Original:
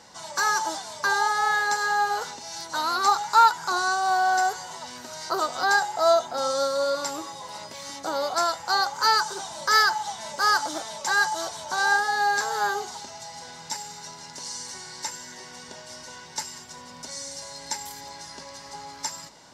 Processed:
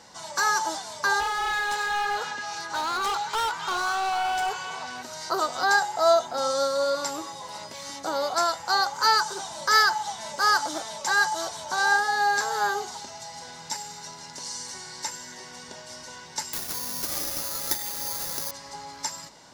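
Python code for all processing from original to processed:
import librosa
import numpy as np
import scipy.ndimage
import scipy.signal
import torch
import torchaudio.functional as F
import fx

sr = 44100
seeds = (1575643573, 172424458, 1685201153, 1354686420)

y = fx.chain(x, sr, fx.high_shelf(hz=8200.0, db=-8.0),
    fx.clip_hard(threshold_db=-24.5),
    fx.echo_stepped(ms=263, hz=3200.0, octaves=-0.7, feedback_pct=70, wet_db=-4), at=(1.2, 5.03))
y = fx.chain(y, sr, fx.air_absorb(metres=50.0),
    fx.resample_bad(factor=8, down='none', up='zero_stuff'),
    fx.band_squash(depth_pct=70), at=(16.53, 18.51))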